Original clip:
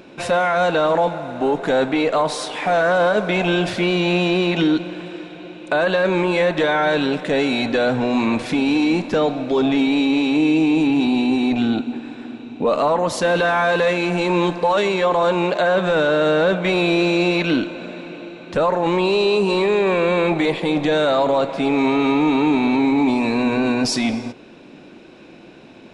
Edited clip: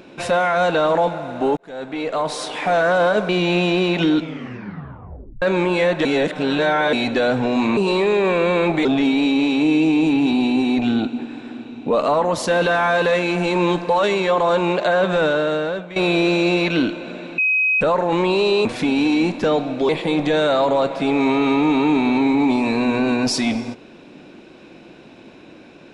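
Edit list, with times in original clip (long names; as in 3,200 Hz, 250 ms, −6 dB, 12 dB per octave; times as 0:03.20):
0:01.57–0:02.50: fade in
0:03.29–0:03.87: remove
0:04.73: tape stop 1.27 s
0:06.63–0:07.51: reverse
0:08.35–0:09.59: swap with 0:19.39–0:20.47
0:15.95–0:16.70: fade out, to −17 dB
0:18.12–0:18.55: beep over 2,530 Hz −14.5 dBFS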